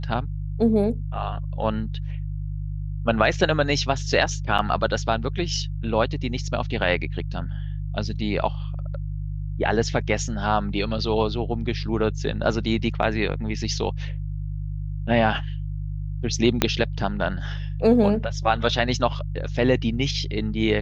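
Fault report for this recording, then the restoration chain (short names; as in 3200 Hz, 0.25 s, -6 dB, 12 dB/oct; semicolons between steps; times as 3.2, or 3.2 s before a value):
hum 50 Hz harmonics 3 -29 dBFS
4.58–4.59 gap 5.9 ms
16.62 pop -2 dBFS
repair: de-click; de-hum 50 Hz, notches 3; interpolate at 4.58, 5.9 ms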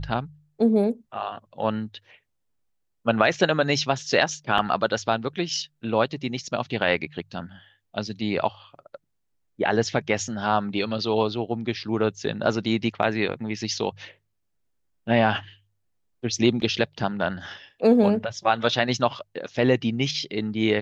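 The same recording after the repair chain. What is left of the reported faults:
16.62 pop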